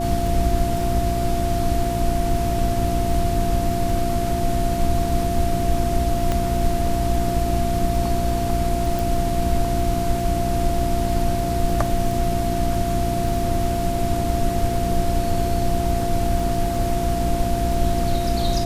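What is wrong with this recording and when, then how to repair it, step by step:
crackle 20 per s -27 dBFS
hum 60 Hz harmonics 6 -26 dBFS
whine 690 Hz -24 dBFS
6.32 s: pop -9 dBFS
8.99 s: pop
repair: de-click; de-hum 60 Hz, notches 6; band-stop 690 Hz, Q 30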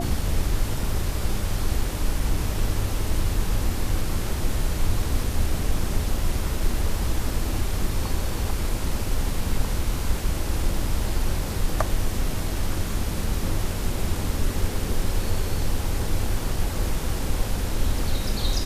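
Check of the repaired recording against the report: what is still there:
nothing left

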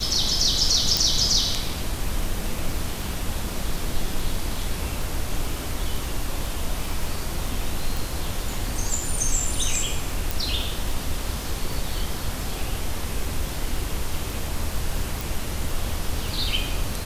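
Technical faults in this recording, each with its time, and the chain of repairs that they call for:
crackle 29 per s -28 dBFS
0.97 s: pop
7.97 s: pop
10.31 s: pop
15.21 s: pop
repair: de-click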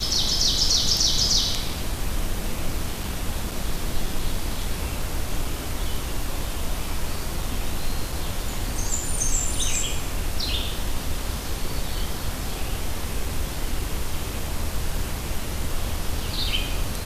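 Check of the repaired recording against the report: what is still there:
0.97 s: pop
15.21 s: pop

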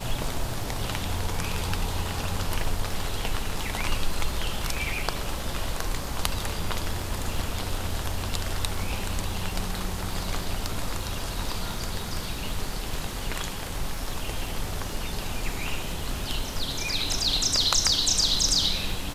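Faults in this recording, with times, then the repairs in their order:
crackle 48 per s -35 dBFS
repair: de-click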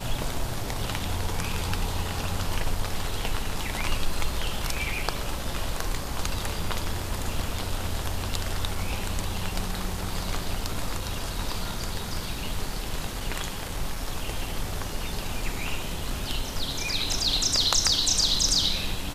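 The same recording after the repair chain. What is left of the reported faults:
nothing left

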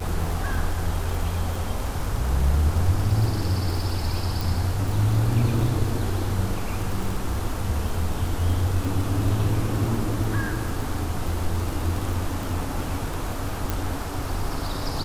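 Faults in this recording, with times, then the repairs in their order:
crackle 31 per s -27 dBFS
4.41 s: pop
13.70 s: pop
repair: de-click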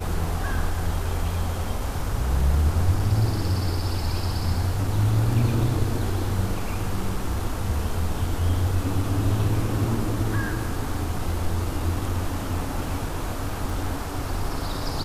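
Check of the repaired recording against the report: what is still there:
13.70 s: pop

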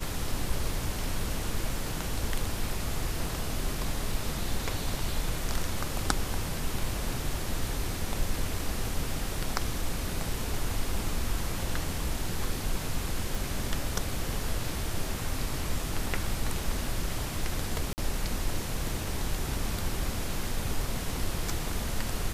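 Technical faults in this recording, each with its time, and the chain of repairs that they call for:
13.35 s: pop
17.93–17.98 s: dropout 49 ms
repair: de-click; interpolate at 17.93 s, 49 ms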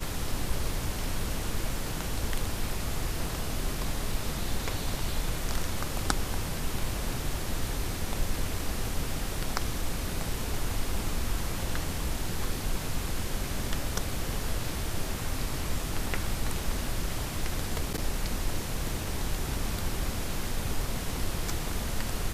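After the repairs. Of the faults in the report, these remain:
nothing left

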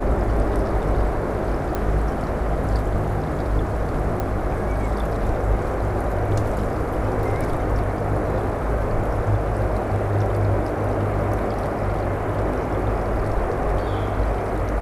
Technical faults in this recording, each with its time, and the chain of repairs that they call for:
1.75 s: pop -12 dBFS
4.20 s: pop -13 dBFS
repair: de-click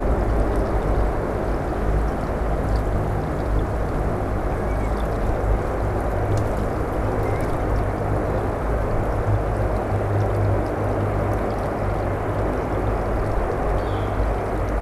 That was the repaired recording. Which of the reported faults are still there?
nothing left

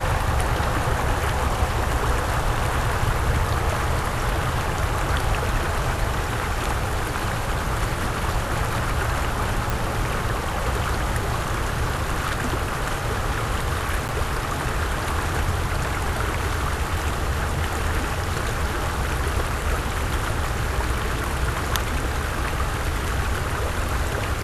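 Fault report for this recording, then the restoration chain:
9.70 s: pop
14.08–14.09 s: dropout 9.3 ms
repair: de-click; interpolate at 14.08 s, 9.3 ms

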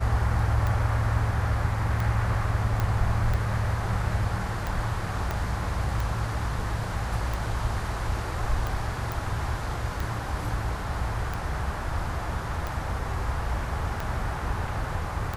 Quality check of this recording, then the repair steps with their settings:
tick 45 rpm
2.80 s: pop -14 dBFS
5.31 s: pop -15 dBFS
9.12 s: pop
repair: de-click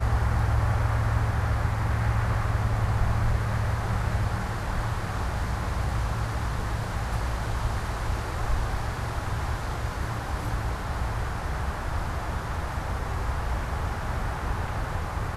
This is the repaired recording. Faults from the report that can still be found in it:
2.80 s: pop
5.31 s: pop

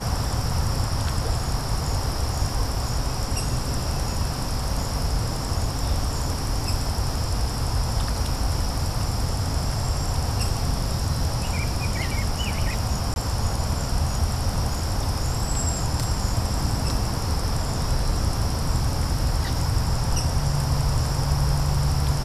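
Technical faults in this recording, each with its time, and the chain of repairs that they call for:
13.14–13.16 s: dropout 21 ms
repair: interpolate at 13.14 s, 21 ms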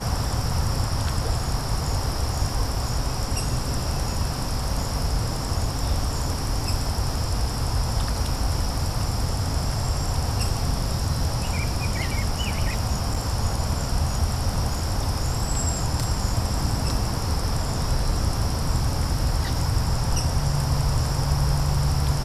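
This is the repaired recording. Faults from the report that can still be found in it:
nothing left

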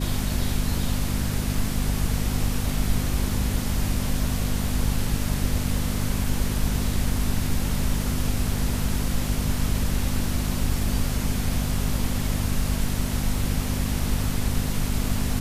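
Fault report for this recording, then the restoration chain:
hum 50 Hz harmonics 5 -28 dBFS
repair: de-hum 50 Hz, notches 5

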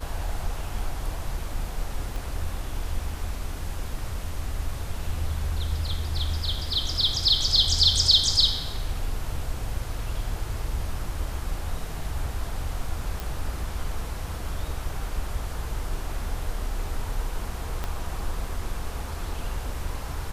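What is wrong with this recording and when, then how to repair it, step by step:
2.16 s: pop
13.20 s: pop
17.84 s: pop -16 dBFS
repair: de-click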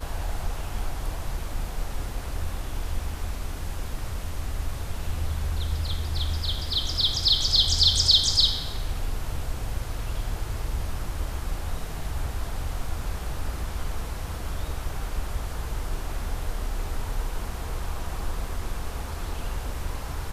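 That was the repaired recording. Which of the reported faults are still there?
2.16 s: pop
17.84 s: pop

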